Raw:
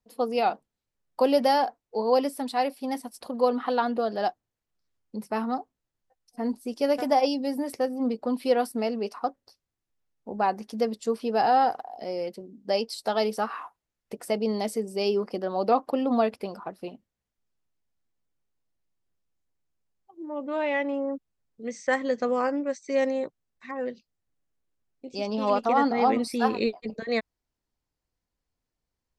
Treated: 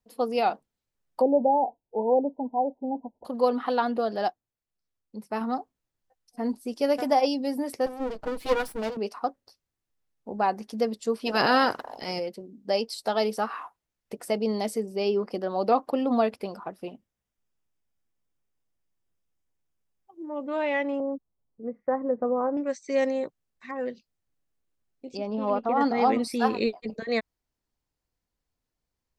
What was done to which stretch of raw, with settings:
0:01.21–0:03.25: linear-phase brick-wall low-pass 1,000 Hz
0:04.23–0:05.41: expander for the loud parts, over −36 dBFS
0:07.86–0:08.97: lower of the sound and its delayed copy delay 6.3 ms
0:11.25–0:12.18: ceiling on every frequency bin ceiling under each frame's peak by 20 dB
0:14.86–0:15.28: parametric band 8,500 Hz −13 dB 1.1 octaves
0:16.65–0:20.35: notch filter 4,200 Hz, Q 7.8
0:21.00–0:22.57: low-pass filter 1,100 Hz 24 dB per octave
0:25.17–0:25.81: head-to-tape spacing loss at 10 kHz 34 dB

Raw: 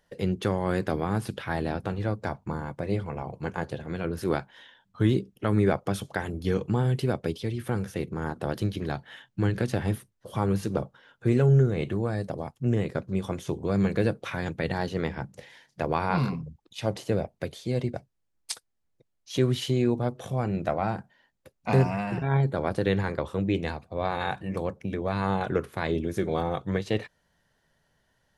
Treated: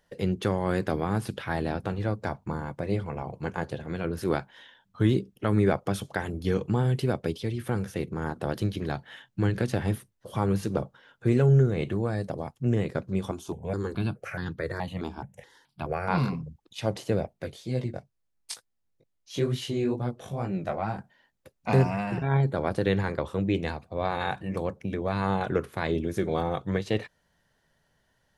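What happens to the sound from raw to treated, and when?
0:13.31–0:16.08: step-sequenced phaser 4.7 Hz 520–2,300 Hz
0:17.33–0:20.97: chorus effect 2.2 Hz, delay 15.5 ms, depth 6.4 ms

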